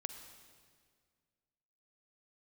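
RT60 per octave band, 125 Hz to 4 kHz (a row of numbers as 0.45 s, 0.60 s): 2.2 s, 2.2 s, 2.0 s, 1.8 s, 1.7 s, 1.6 s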